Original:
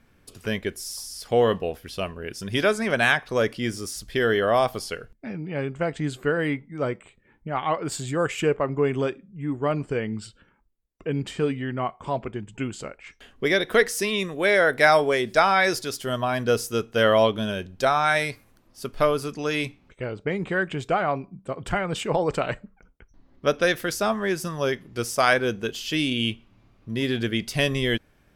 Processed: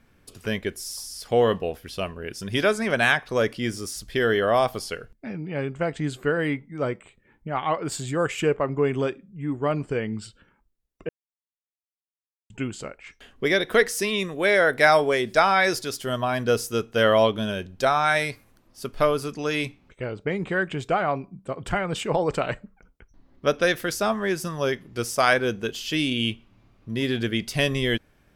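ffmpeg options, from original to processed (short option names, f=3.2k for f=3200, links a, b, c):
-filter_complex "[0:a]asplit=3[a][b][c];[a]atrim=end=11.09,asetpts=PTS-STARTPTS,afade=t=out:st=11.086:d=0.004:c=hsin[d];[b]atrim=start=11.09:end=12.5,asetpts=PTS-STARTPTS,volume=0[e];[c]atrim=start=12.5,asetpts=PTS-STARTPTS,afade=t=in:d=0.004:c=hsin[f];[d][e][f]concat=n=3:v=0:a=1"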